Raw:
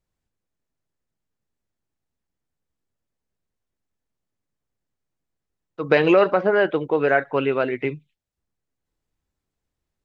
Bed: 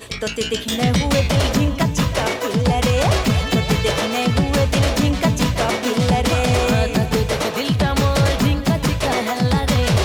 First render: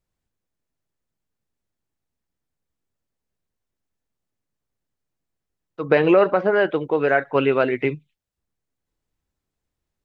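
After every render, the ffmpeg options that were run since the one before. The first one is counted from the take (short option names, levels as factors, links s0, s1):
-filter_complex "[0:a]asplit=3[s0][s1][s2];[s0]afade=t=out:st=5.85:d=0.02[s3];[s1]aemphasis=mode=reproduction:type=75fm,afade=t=in:st=5.85:d=0.02,afade=t=out:st=6.34:d=0.02[s4];[s2]afade=t=in:st=6.34:d=0.02[s5];[s3][s4][s5]amix=inputs=3:normalize=0,asplit=3[s6][s7][s8];[s6]atrim=end=7.352[s9];[s7]atrim=start=7.348:end=7.952,asetpts=PTS-STARTPTS,volume=1.41[s10];[s8]atrim=start=7.948[s11];[s9][s10]acrossfade=d=0.004:c1=hsin:c2=hsin[s12];[s12][s11]acrossfade=d=0.004:c1=hsin:c2=hsin"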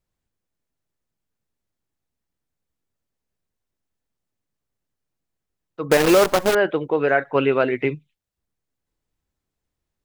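-filter_complex "[0:a]asettb=1/sr,asplit=3[s0][s1][s2];[s0]atrim=end=5.914[s3];[s1]atrim=start=5.91:end=6.55,asetpts=PTS-STARTPTS,afade=t=in:d=0.004:c=qsin,afade=t=out:st=0.636:d=0.004:c=qsin,acrusher=bits=4:dc=4:mix=0:aa=0.000001[s4];[s2]atrim=start=6.546[s5];[s3][s4]acrossfade=d=0.004:c1=hsin:c2=qsin[s6];[s6][s5]acrossfade=d=0.004:c1=qsin:c2=hsin"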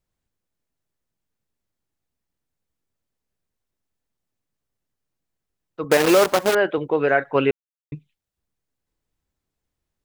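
-filter_complex "[0:a]asettb=1/sr,asplit=3[s0][s1][s2];[s0]atrim=end=5.844[s3];[s1]atrim=start=5.84:end=6.78,asetpts=PTS-STARTPTS,afade=t=in:d=0.004:c=qsin,afade=t=out:st=0.936:d=0.004:c=qsin,highpass=f=180:p=1[s4];[s2]atrim=start=6.776[s5];[s3][s4]acrossfade=d=0.004:c1=hsin:c2=qsin[s6];[s6][s5]acrossfade=d=0.004:c1=qsin:c2=hsin,asplit=3[s7][s8][s9];[s7]atrim=end=7.51,asetpts=PTS-STARTPTS,afade=t=out:st=7.506:d=0.004:c=hsin[s10];[s8]atrim=start=7.51:end=7.92,asetpts=PTS-STARTPTS,volume=0[s11];[s9]atrim=start=7.92,asetpts=PTS-STARTPTS,afade=t=in:d=0.004:c=hsin[s12];[s10][s11][s12]concat=n=3:v=0:a=1"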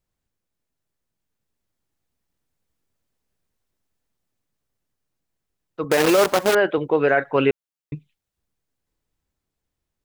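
-af "dynaudnorm=f=380:g=9:m=1.68,alimiter=limit=0.398:level=0:latency=1:release=12"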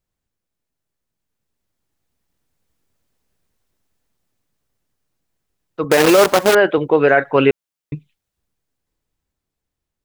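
-af "dynaudnorm=f=440:g=9:m=2.24"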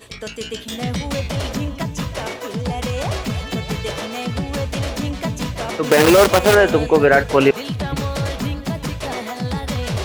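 -filter_complex "[1:a]volume=0.473[s0];[0:a][s0]amix=inputs=2:normalize=0"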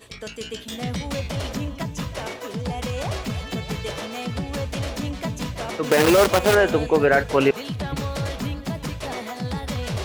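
-af "volume=0.596"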